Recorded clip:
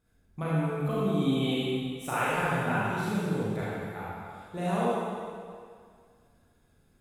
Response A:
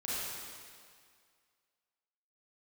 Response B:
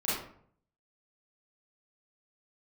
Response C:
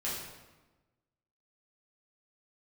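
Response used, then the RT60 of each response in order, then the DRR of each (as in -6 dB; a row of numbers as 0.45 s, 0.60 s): A; 2.0 s, 0.60 s, 1.2 s; -9.5 dB, -10.5 dB, -8.0 dB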